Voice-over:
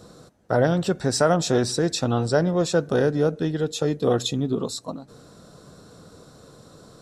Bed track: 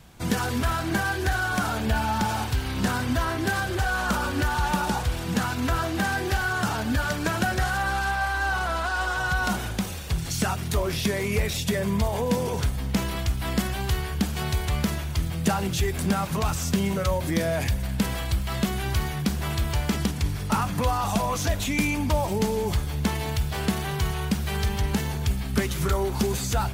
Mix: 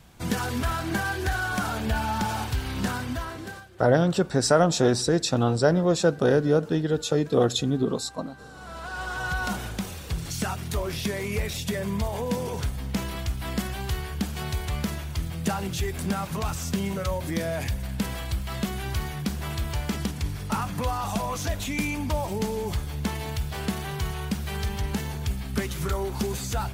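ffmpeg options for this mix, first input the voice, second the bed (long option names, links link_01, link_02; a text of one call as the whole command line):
ffmpeg -i stem1.wav -i stem2.wav -filter_complex "[0:a]adelay=3300,volume=0dB[link_01];[1:a]volume=18dB,afade=type=out:start_time=2.77:duration=0.92:silence=0.0841395,afade=type=in:start_time=8.53:duration=0.74:silence=0.1[link_02];[link_01][link_02]amix=inputs=2:normalize=0" out.wav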